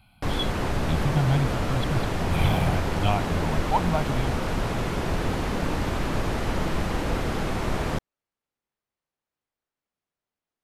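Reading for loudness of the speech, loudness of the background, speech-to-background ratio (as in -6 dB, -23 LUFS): -28.5 LUFS, -28.0 LUFS, -0.5 dB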